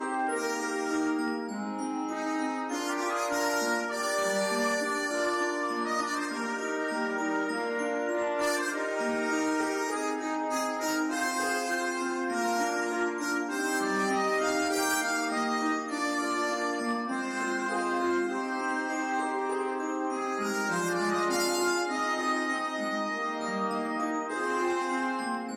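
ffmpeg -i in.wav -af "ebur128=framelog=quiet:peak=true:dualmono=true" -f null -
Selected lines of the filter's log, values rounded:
Integrated loudness:
  I:         -26.6 LUFS
  Threshold: -36.6 LUFS
Loudness range:
  LRA:         2.0 LU
  Threshold: -46.5 LUFS
  LRA low:   -27.3 LUFS
  LRA high:  -25.3 LUFS
True peak:
  Peak:      -18.5 dBFS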